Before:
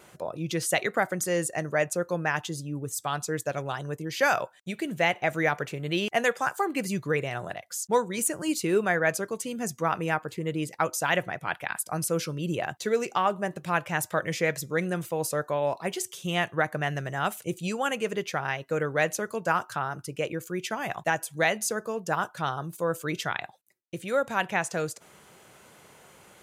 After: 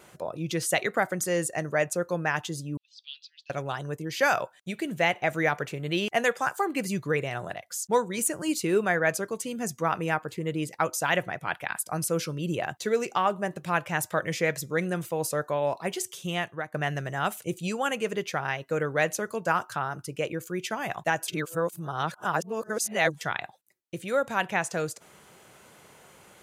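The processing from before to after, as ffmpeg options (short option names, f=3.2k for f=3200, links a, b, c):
-filter_complex "[0:a]asettb=1/sr,asplit=3[a][b][c];[a]atrim=end=2.774[d];[b]atrim=start=2.77:end=3.5,asetpts=PTS-STARTPTS,afade=t=in:d=0.004:c=qsin,afade=t=out:st=0.726:d=0.004:c=qsin,asuperpass=centerf=3600:order=8:qfactor=1.7[e];[c]atrim=start=3.496[f];[d][e]acrossfade=d=0.004:c1=hsin:c2=qsin[g];[g][f]acrossfade=d=0.004:c1=qsin:c2=hsin,asplit=4[h][i][j][k];[h]atrim=end=16.74,asetpts=PTS-STARTPTS,afade=t=out:st=16.18:d=0.56:silence=0.199526[l];[i]atrim=start=16.74:end=21.282,asetpts=PTS-STARTPTS,afade=t=in:d=0.004:c=hsin:silence=0.199526[m];[j]atrim=start=21.278:end=23.212,asetpts=PTS-STARTPTS,areverse[n];[k]atrim=start=23.208[o];[l][m]concat=n=2:v=0:a=1[p];[p][n]acrossfade=d=0.004:c1=hsin:c2=hsin[q];[q][o]acrossfade=d=0.004:c1=hsin:c2=hsin"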